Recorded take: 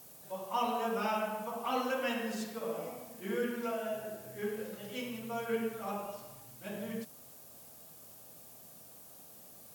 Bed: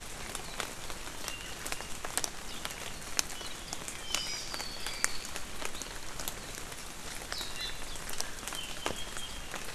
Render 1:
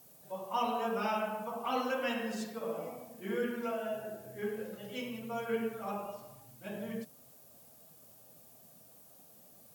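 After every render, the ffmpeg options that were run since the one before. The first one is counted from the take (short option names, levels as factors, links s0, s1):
-af "afftdn=nr=6:nf=-54"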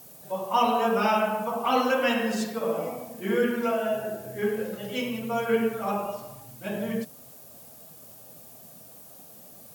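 -af "volume=3.16"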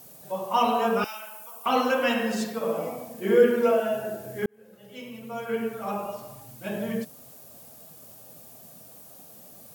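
-filter_complex "[0:a]asettb=1/sr,asplit=3[s0][s1][s2];[s0]atrim=end=1.044[s3];[s1]atrim=start=1.04:end=1.66,asetpts=PTS-STARTPTS,afade=t=in:d=0.004:c=qsin,afade=t=out:st=0.616:d=0.004:c=qsin,aderivative[s4];[s2]atrim=start=1.656[s5];[s3][s4]acrossfade=d=0.004:c1=hsin:c2=qsin[s6];[s6][s5]acrossfade=d=0.004:c1=qsin:c2=hsin,asettb=1/sr,asplit=3[s7][s8][s9];[s7]atrim=end=3.214[s10];[s8]atrim=start=3.21:end=3.8,asetpts=PTS-STARTPTS,afade=t=in:d=0.004:c=qsin,afade=t=out:st=0.586:d=0.004:c=qsin,equalizer=f=480:w=1.9:g=8[s11];[s9]atrim=start=3.796[s12];[s10][s11]acrossfade=d=0.004:c1=hsin:c2=qsin[s13];[s13][s12]acrossfade=d=0.004:c1=qsin:c2=hsin,asplit=2[s14][s15];[s14]atrim=end=4.46,asetpts=PTS-STARTPTS,afade=t=out:st=4.456:d=0.004:c=hsin[s16];[s15]atrim=start=4.46,asetpts=PTS-STARTPTS,afade=t=in:d=1.94[s17];[s16][s17]concat=n=2:v=0:a=1"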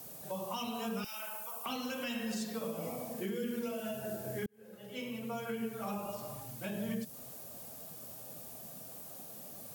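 -filter_complex "[0:a]acrossover=split=220|3000[s0][s1][s2];[s1]acompressor=threshold=0.0126:ratio=6[s3];[s0][s3][s2]amix=inputs=3:normalize=0,alimiter=level_in=1.68:limit=0.0631:level=0:latency=1:release=186,volume=0.596"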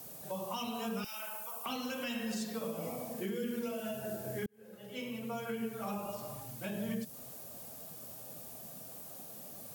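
-af anull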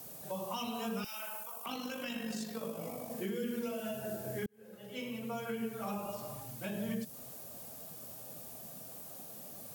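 -filter_complex "[0:a]asettb=1/sr,asplit=3[s0][s1][s2];[s0]atrim=end=1.434[s3];[s1]atrim=start=1.43:end=3.1,asetpts=PTS-STARTPTS,afade=t=in:d=0.004:c=qsin,afade=t=out:st=1.666:d=0.004:c=qsin,tremolo=f=49:d=0.462[s4];[s2]atrim=start=3.096[s5];[s3][s4]acrossfade=d=0.004:c1=hsin:c2=qsin[s6];[s6][s5]acrossfade=d=0.004:c1=qsin:c2=hsin"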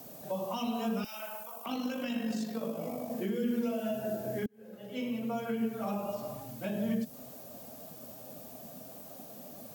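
-af "equalizer=f=250:t=o:w=0.67:g=8,equalizer=f=630:t=o:w=0.67:g=6,equalizer=f=10000:t=o:w=0.67:g=-6"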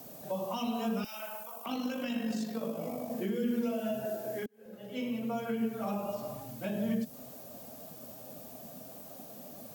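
-filter_complex "[0:a]asettb=1/sr,asplit=3[s0][s1][s2];[s0]atrim=end=4.054[s3];[s1]atrim=start=4.05:end=4.66,asetpts=PTS-STARTPTS,afade=t=in:d=0.004:c=qsin,afade=t=out:st=0.606:d=0.004:c=qsin,bass=f=250:g=-11,treble=f=4000:g=1[s4];[s2]atrim=start=4.656[s5];[s3][s4]acrossfade=d=0.004:c1=hsin:c2=qsin[s6];[s6][s5]acrossfade=d=0.004:c1=qsin:c2=hsin"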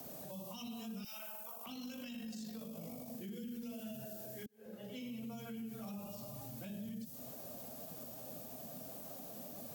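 -filter_complex "[0:a]acrossover=split=200|3000[s0][s1][s2];[s1]acompressor=threshold=0.00355:ratio=6[s3];[s0][s3][s2]amix=inputs=3:normalize=0,alimiter=level_in=5.01:limit=0.0631:level=0:latency=1:release=50,volume=0.2"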